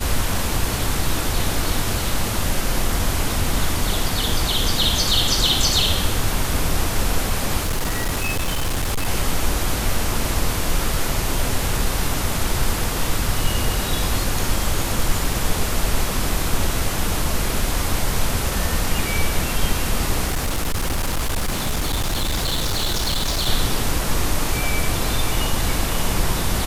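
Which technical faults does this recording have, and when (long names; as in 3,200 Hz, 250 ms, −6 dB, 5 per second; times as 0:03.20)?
0:07.63–0:09.07: clipping −17.5 dBFS
0:20.27–0:23.49: clipping −17.5 dBFS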